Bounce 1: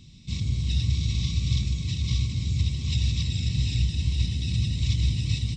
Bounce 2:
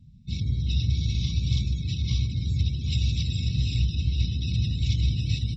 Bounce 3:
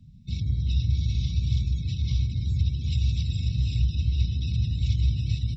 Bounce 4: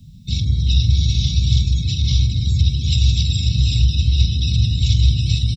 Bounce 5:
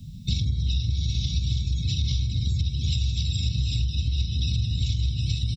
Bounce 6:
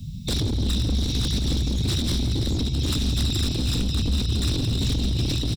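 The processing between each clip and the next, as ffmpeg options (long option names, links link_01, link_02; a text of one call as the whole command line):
ffmpeg -i in.wav -af "afftdn=noise_reduction=23:noise_floor=-42" out.wav
ffmpeg -i in.wav -filter_complex "[0:a]acrossover=split=130[link_01][link_02];[link_02]acompressor=threshold=-41dB:ratio=2.5[link_03];[link_01][link_03]amix=inputs=2:normalize=0,volume=1.5dB" out.wav
ffmpeg -i in.wav -filter_complex "[0:a]aexciter=amount=3:drive=4.7:freq=3000,asplit=2[link_01][link_02];[link_02]adelay=45,volume=-13dB[link_03];[link_01][link_03]amix=inputs=2:normalize=0,volume=8dB" out.wav
ffmpeg -i in.wav -af "acompressor=threshold=-23dB:ratio=12,volume=2dB" out.wav
ffmpeg -i in.wav -filter_complex "[0:a]aeval=exprs='0.0631*(abs(mod(val(0)/0.0631+3,4)-2)-1)':channel_layout=same,asplit=2[link_01][link_02];[link_02]aecho=0:1:171|342|513|684|855|1026:0.211|0.127|0.0761|0.0457|0.0274|0.0164[link_03];[link_01][link_03]amix=inputs=2:normalize=0,volume=5.5dB" out.wav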